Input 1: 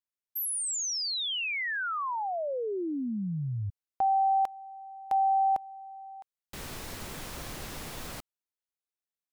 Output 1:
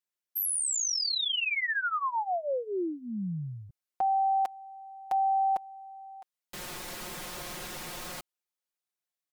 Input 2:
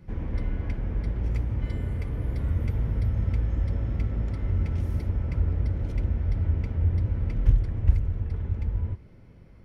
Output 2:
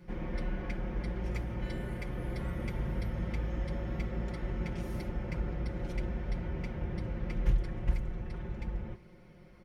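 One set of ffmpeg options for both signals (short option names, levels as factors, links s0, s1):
-af "lowshelf=f=210:g=-9.5,aecho=1:1:5.6:0.79"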